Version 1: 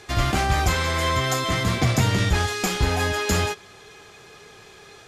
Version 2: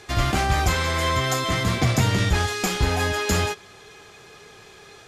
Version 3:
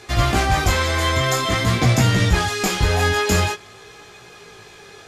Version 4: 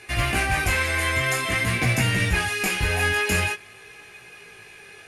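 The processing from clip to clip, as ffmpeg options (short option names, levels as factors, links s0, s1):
-af anull
-af "flanger=delay=16.5:depth=5.2:speed=0.48,volume=2.11"
-af "acrusher=bits=9:mode=log:mix=0:aa=0.000001,superequalizer=11b=2.24:12b=3.16:16b=3.55,volume=0.447"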